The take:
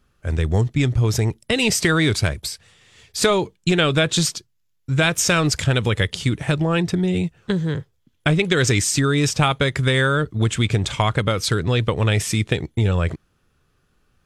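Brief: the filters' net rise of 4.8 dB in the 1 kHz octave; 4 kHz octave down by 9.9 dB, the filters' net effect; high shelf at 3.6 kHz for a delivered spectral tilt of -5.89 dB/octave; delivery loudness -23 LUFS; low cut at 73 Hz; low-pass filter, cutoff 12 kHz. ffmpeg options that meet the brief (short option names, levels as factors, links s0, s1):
-af "highpass=73,lowpass=12000,equalizer=f=1000:t=o:g=8,highshelf=f=3600:g=-8,equalizer=f=4000:t=o:g=-8,volume=0.75"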